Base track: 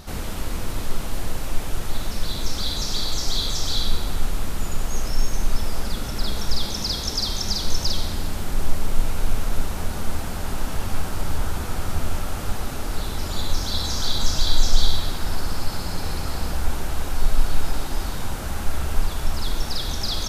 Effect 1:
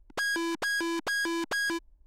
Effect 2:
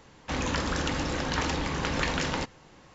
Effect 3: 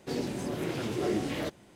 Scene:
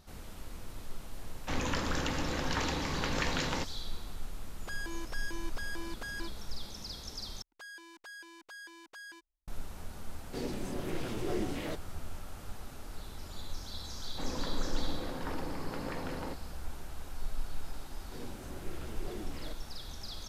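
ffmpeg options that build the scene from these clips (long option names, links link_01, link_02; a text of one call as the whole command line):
ffmpeg -i bed.wav -i cue0.wav -i cue1.wav -i cue2.wav -filter_complex "[2:a]asplit=2[link_01][link_02];[1:a]asplit=2[link_03][link_04];[3:a]asplit=2[link_05][link_06];[0:a]volume=-17.5dB[link_07];[link_04]lowshelf=frequency=400:gain=-12[link_08];[link_02]bandpass=frequency=390:width_type=q:width=0.52:csg=0[link_09];[link_07]asplit=2[link_10][link_11];[link_10]atrim=end=7.424[link_12];[link_08]atrim=end=2.06,asetpts=PTS-STARTPTS,volume=-18dB[link_13];[link_11]atrim=start=9.476[link_14];[link_01]atrim=end=2.94,asetpts=PTS-STARTPTS,volume=-4.5dB,afade=type=in:duration=0.004:curve=hsin,afade=type=out:start_time=2.936:duration=0.004:curve=hsin,adelay=1190[link_15];[link_03]atrim=end=2.06,asetpts=PTS-STARTPTS,volume=-12.5dB,afade=type=in:duration=0.004:curve=hsin,afade=type=out:start_time=2.056:duration=0.004:curve=hsin,adelay=4500[link_16];[link_05]atrim=end=1.75,asetpts=PTS-STARTPTS,volume=-5dB,afade=type=in:duration=0.004:curve=hsin,afade=type=out:start_time=1.746:duration=0.004:curve=hsin,adelay=452466S[link_17];[link_09]atrim=end=2.94,asetpts=PTS-STARTPTS,volume=-7dB,afade=type=in:duration=0.004:curve=hsin,afade=type=out:start_time=2.936:duration=0.004:curve=hsin,adelay=13890[link_18];[link_06]atrim=end=1.75,asetpts=PTS-STARTPTS,volume=-14dB,afade=type=in:duration=0.004:curve=hsin,afade=type=out:start_time=1.746:duration=0.004:curve=hsin,adelay=18040[link_19];[link_12][link_13]acrossfade=duration=0.004:curve1=hsin:curve2=hsin[link_20];[link_20][link_14]acrossfade=duration=0.004:curve1=hsin:curve2=hsin[link_21];[link_21][link_15][link_16][link_17][link_18][link_19]amix=inputs=6:normalize=0" out.wav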